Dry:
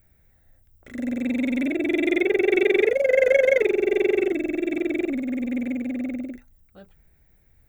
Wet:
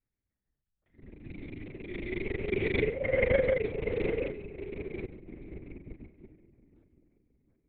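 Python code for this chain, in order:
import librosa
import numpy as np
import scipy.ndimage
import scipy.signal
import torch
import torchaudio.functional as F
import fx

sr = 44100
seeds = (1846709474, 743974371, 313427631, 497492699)

y = fx.echo_wet_lowpass(x, sr, ms=725, feedback_pct=36, hz=1600.0, wet_db=-6.5)
y = fx.lpc_vocoder(y, sr, seeds[0], excitation='whisper', order=8)
y = fx.upward_expand(y, sr, threshold_db=-30.0, expansion=2.5)
y = F.gain(torch.from_numpy(y), -6.0).numpy()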